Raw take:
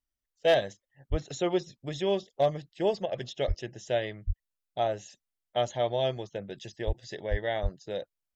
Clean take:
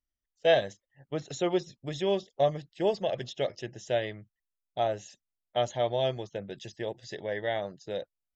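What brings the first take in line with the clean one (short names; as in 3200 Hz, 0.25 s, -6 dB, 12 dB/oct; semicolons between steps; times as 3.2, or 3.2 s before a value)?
clip repair -15.5 dBFS; de-plosive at 1.1/3.47/4.26/6.86/7.3/7.62; interpolate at 3.06, 53 ms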